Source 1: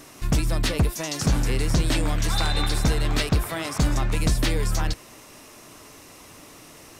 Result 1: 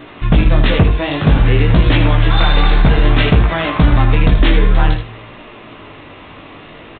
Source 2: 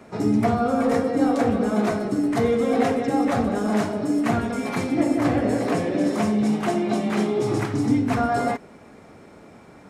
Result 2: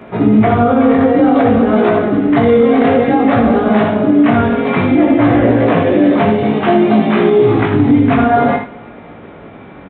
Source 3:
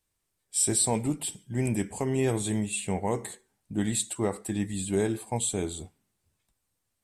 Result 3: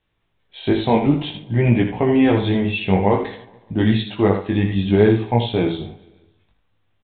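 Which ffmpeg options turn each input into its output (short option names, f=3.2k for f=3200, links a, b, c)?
-filter_complex "[0:a]asplit=2[a][b];[b]aecho=0:1:143|286|429|572:0.0708|0.0404|0.023|0.0131[c];[a][c]amix=inputs=2:normalize=0,aresample=8000,aresample=44100,flanger=delay=17:depth=4.7:speed=0.55,asplit=2[d][e];[e]aecho=0:1:60|79:0.251|0.355[f];[d][f]amix=inputs=2:normalize=0,alimiter=level_in=15.5dB:limit=-1dB:release=50:level=0:latency=1,volume=-1dB"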